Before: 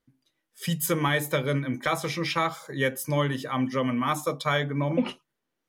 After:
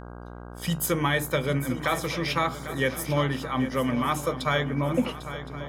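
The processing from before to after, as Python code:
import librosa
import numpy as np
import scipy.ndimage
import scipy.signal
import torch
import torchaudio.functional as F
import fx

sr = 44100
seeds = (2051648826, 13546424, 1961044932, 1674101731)

y = fx.echo_swing(x, sr, ms=1065, ratio=3, feedback_pct=33, wet_db=-12.5)
y = fx.dmg_buzz(y, sr, base_hz=60.0, harmonics=27, level_db=-41.0, tilt_db=-4, odd_only=False)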